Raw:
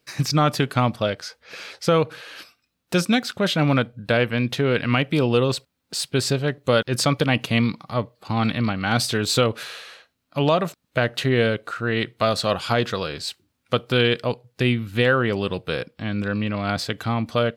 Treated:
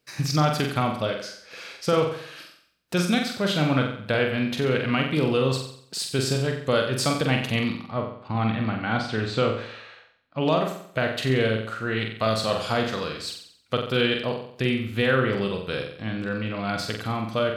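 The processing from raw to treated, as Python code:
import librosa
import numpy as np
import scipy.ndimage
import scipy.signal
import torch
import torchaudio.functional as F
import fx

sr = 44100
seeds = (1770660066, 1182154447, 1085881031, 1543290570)

y = fx.lowpass(x, sr, hz=2800.0, slope=12, at=(7.82, 10.4), fade=0.02)
y = fx.room_flutter(y, sr, wall_m=7.8, rt60_s=0.61)
y = y * 10.0 ** (-4.5 / 20.0)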